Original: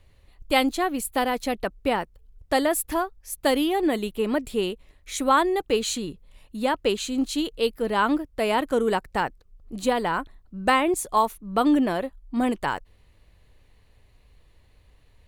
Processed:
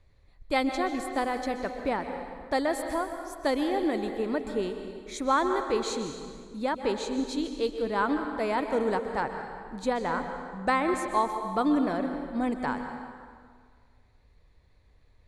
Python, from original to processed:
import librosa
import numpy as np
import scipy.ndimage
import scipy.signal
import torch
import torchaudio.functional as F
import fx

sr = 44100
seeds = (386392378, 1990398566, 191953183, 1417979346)

y = scipy.signal.sosfilt(scipy.signal.butter(2, 6400.0, 'lowpass', fs=sr, output='sos'), x)
y = fx.peak_eq(y, sr, hz=2900.0, db=-13.5, octaves=0.2)
y = fx.rev_plate(y, sr, seeds[0], rt60_s=1.9, hf_ratio=0.75, predelay_ms=115, drr_db=6.0)
y = y * 10.0 ** (-5.0 / 20.0)